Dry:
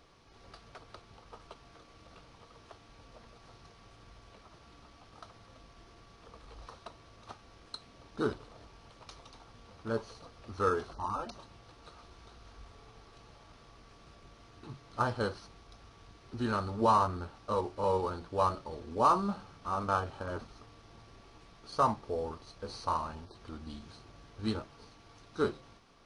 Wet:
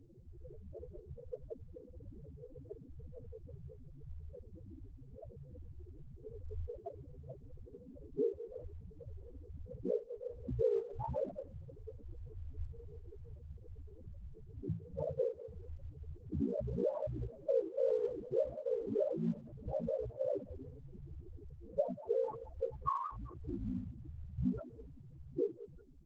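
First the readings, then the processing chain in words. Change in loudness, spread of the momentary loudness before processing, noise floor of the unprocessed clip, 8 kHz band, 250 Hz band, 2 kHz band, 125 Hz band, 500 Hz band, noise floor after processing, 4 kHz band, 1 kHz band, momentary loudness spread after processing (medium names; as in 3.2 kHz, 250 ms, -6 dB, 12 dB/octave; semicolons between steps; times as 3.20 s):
-6.0 dB, 23 LU, -58 dBFS, under -20 dB, -3.5 dB, under -25 dB, -1.5 dB, 0.0 dB, -56 dBFS, under -25 dB, -15.0 dB, 18 LU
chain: low-pass sweep 550 Hz -> 2.9 kHz, 21.74–24.35 s; ring modulator 29 Hz; level-controlled noise filter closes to 360 Hz, open at -27 dBFS; thinning echo 185 ms, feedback 24%, high-pass 420 Hz, level -21 dB; compression 5:1, threshold -43 dBFS, peak gain reduction 19 dB; loudest bins only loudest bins 4; trim +14 dB; Opus 12 kbps 48 kHz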